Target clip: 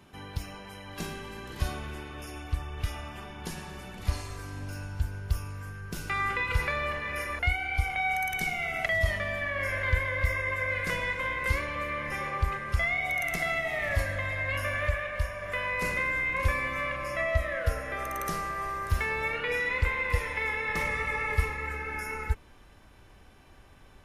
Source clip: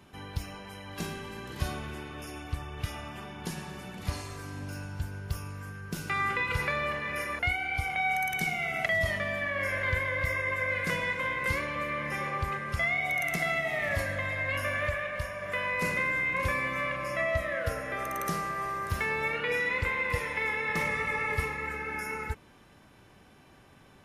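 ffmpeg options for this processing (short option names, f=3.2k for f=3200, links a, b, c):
-af "asubboost=boost=6:cutoff=60"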